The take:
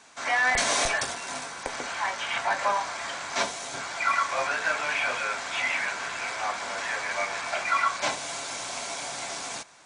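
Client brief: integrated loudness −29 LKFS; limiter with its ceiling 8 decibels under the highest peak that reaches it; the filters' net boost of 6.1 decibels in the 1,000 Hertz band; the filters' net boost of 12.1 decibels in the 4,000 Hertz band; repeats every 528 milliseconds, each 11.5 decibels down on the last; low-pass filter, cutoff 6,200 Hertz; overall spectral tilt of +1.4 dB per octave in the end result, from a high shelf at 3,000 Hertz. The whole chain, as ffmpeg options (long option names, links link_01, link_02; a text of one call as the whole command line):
ffmpeg -i in.wav -af "lowpass=6200,equalizer=frequency=1000:width_type=o:gain=6,highshelf=frequency=3000:gain=8.5,equalizer=frequency=4000:width_type=o:gain=9,alimiter=limit=-13dB:level=0:latency=1,aecho=1:1:528|1056|1584:0.266|0.0718|0.0194,volume=-6.5dB" out.wav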